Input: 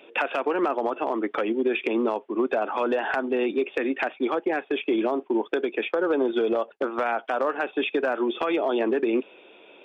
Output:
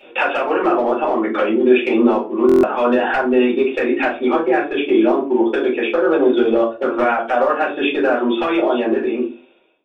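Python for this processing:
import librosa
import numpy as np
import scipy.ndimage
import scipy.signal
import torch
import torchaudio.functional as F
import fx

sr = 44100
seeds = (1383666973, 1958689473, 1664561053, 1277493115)

y = fx.fade_out_tail(x, sr, length_s=1.37)
y = fx.room_shoebox(y, sr, seeds[0], volume_m3=140.0, walls='furnished', distance_m=4.4)
y = fx.buffer_glitch(y, sr, at_s=(2.47,), block=1024, repeats=6)
y = y * 10.0 ** (-1.5 / 20.0)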